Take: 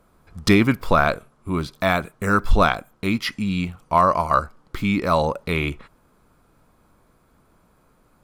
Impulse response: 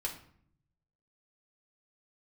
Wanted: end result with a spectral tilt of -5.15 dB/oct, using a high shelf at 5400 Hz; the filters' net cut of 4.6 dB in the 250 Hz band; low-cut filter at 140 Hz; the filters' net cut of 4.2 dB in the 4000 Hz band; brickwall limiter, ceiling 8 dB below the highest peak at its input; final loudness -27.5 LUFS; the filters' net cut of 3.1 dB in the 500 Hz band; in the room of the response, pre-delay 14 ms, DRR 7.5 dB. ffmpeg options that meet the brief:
-filter_complex "[0:a]highpass=140,equalizer=f=250:t=o:g=-4.5,equalizer=f=500:t=o:g=-3,equalizer=f=4k:t=o:g=-7.5,highshelf=f=5.4k:g=5.5,alimiter=limit=-11.5dB:level=0:latency=1,asplit=2[a][b];[1:a]atrim=start_sample=2205,adelay=14[c];[b][c]afir=irnorm=-1:irlink=0,volume=-9dB[d];[a][d]amix=inputs=2:normalize=0,volume=-1.5dB"

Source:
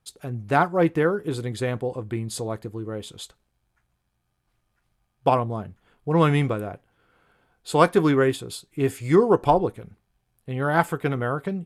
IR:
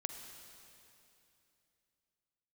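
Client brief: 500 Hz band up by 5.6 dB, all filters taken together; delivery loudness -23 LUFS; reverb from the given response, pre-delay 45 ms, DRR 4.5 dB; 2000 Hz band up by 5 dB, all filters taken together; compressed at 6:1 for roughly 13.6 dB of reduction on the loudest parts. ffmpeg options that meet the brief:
-filter_complex "[0:a]equalizer=f=500:t=o:g=6.5,equalizer=f=2k:t=o:g=6.5,acompressor=threshold=-23dB:ratio=6,asplit=2[a][b];[1:a]atrim=start_sample=2205,adelay=45[c];[b][c]afir=irnorm=-1:irlink=0,volume=-3.5dB[d];[a][d]amix=inputs=2:normalize=0,volume=4.5dB"

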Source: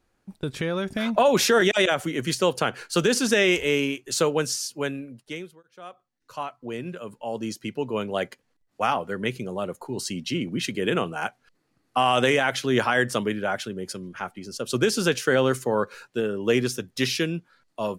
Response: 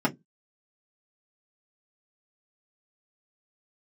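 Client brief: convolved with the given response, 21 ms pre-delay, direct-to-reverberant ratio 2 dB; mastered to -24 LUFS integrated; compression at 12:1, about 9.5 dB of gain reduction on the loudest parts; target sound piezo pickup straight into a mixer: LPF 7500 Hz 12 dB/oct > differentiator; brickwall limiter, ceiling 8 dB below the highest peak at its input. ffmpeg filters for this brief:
-filter_complex "[0:a]acompressor=threshold=-25dB:ratio=12,alimiter=limit=-21dB:level=0:latency=1,asplit=2[a][b];[1:a]atrim=start_sample=2205,adelay=21[c];[b][c]afir=irnorm=-1:irlink=0,volume=-14dB[d];[a][d]amix=inputs=2:normalize=0,lowpass=7.5k,aderivative,volume=18dB"

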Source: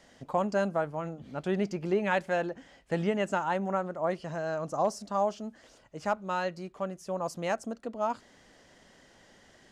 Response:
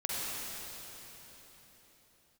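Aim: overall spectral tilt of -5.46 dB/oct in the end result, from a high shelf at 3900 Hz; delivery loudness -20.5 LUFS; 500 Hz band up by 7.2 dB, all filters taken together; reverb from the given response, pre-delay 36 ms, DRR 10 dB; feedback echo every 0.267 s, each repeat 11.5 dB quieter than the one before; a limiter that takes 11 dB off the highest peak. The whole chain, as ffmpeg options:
-filter_complex "[0:a]equalizer=f=500:t=o:g=9,highshelf=f=3.9k:g=8,alimiter=limit=-21dB:level=0:latency=1,aecho=1:1:267|534|801:0.266|0.0718|0.0194,asplit=2[a][b];[1:a]atrim=start_sample=2205,adelay=36[c];[b][c]afir=irnorm=-1:irlink=0,volume=-16.5dB[d];[a][d]amix=inputs=2:normalize=0,volume=10.5dB"

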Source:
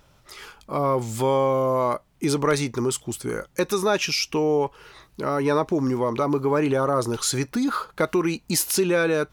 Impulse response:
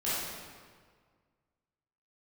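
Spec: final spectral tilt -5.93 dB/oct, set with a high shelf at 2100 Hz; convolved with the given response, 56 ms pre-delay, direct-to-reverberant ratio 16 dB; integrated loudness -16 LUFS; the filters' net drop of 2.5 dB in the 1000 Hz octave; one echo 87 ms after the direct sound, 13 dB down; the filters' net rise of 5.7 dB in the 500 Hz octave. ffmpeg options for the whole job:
-filter_complex "[0:a]equalizer=f=500:t=o:g=8,equalizer=f=1k:t=o:g=-4,highshelf=f=2.1k:g=-6,aecho=1:1:87:0.224,asplit=2[a][b];[1:a]atrim=start_sample=2205,adelay=56[c];[b][c]afir=irnorm=-1:irlink=0,volume=-24dB[d];[a][d]amix=inputs=2:normalize=0,volume=4dB"

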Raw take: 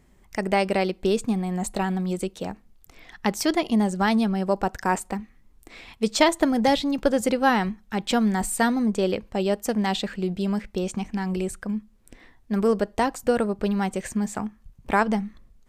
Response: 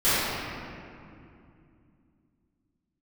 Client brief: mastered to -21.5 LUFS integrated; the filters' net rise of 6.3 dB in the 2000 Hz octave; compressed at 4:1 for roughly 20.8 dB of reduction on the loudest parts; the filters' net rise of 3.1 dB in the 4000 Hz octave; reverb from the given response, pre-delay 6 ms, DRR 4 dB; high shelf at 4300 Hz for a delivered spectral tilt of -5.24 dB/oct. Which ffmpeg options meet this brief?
-filter_complex "[0:a]equalizer=f=2k:t=o:g=8,equalizer=f=4k:t=o:g=5.5,highshelf=f=4.3k:g=-8.5,acompressor=threshold=-38dB:ratio=4,asplit=2[a][b];[1:a]atrim=start_sample=2205,adelay=6[c];[b][c]afir=irnorm=-1:irlink=0,volume=-23dB[d];[a][d]amix=inputs=2:normalize=0,volume=16.5dB"

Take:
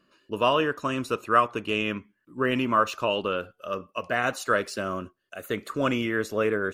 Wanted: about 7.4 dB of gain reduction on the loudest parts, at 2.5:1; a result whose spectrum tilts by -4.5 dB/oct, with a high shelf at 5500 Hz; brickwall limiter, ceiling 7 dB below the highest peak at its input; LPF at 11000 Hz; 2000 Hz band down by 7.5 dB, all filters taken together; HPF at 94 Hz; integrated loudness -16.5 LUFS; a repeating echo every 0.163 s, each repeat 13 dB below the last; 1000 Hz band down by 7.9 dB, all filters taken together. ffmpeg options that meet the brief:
-af "highpass=94,lowpass=11k,equalizer=f=1k:t=o:g=-7.5,equalizer=f=2k:t=o:g=-6.5,highshelf=f=5.5k:g=-8.5,acompressor=threshold=-33dB:ratio=2.5,alimiter=level_in=3dB:limit=-24dB:level=0:latency=1,volume=-3dB,aecho=1:1:163|326|489:0.224|0.0493|0.0108,volume=22dB"

